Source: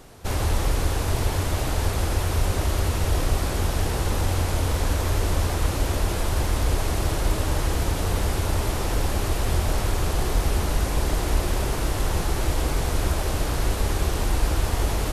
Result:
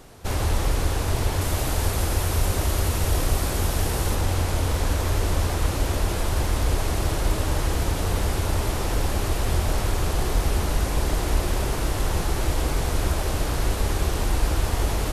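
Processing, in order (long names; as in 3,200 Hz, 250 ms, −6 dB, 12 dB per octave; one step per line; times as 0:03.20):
0:01.41–0:04.15: high-shelf EQ 8,300 Hz +7.5 dB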